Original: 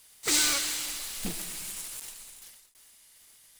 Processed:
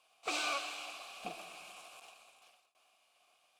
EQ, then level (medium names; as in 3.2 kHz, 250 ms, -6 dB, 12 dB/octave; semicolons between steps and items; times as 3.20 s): vowel filter a; +9.0 dB